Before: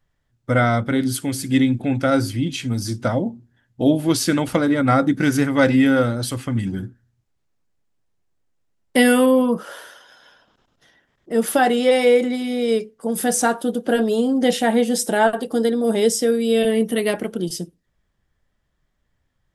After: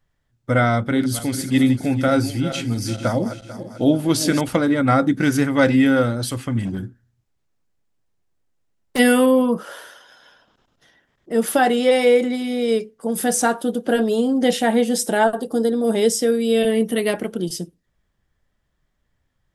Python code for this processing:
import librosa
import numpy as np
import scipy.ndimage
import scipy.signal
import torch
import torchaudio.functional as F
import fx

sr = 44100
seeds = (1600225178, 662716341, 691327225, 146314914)

y = fx.reverse_delay_fb(x, sr, ms=222, feedback_pct=61, wet_db=-11.0, at=(0.75, 4.41))
y = fx.clip_hard(y, sr, threshold_db=-20.5, at=(6.59, 8.98), fade=0.02)
y = fx.peak_eq(y, sr, hz=2400.0, db=-11.5, octaves=0.95, at=(15.24, 15.74))